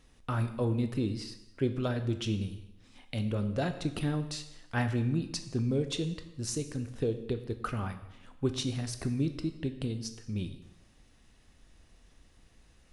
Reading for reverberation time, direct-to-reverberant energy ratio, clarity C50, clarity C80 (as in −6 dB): 0.80 s, 8.0 dB, 11.0 dB, 13.0 dB